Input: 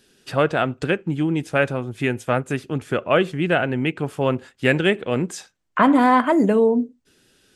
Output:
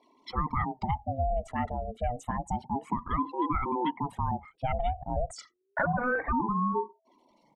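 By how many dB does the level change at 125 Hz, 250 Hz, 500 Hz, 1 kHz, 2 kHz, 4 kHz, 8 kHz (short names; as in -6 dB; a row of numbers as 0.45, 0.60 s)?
-8.5, -13.5, -14.5, -6.0, -12.0, -18.0, -12.0 dB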